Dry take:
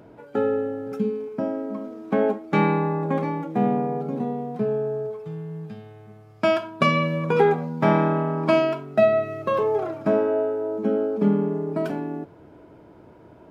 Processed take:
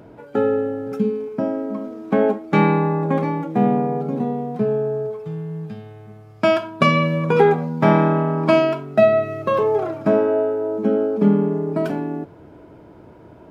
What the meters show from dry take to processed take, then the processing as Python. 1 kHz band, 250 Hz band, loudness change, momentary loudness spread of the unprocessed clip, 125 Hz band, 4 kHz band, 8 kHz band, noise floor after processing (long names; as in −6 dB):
+3.5 dB, +4.5 dB, +4.0 dB, 12 LU, +5.0 dB, +3.5 dB, can't be measured, −45 dBFS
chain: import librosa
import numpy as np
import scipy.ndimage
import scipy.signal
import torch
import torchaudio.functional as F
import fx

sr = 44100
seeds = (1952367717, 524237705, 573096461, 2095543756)

y = fx.low_shelf(x, sr, hz=160.0, db=3.0)
y = y * 10.0 ** (3.5 / 20.0)